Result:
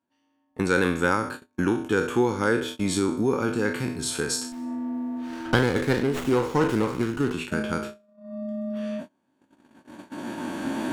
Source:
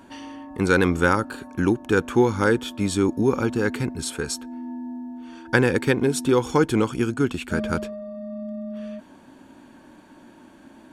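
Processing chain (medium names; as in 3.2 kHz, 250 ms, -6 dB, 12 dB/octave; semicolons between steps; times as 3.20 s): spectral sustain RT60 0.53 s; recorder AGC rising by 7.3 dB/s; high-pass 100 Hz 12 dB/octave; gate -29 dBFS, range -31 dB; 4.52–7.33 s: sliding maximum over 9 samples; trim -4.5 dB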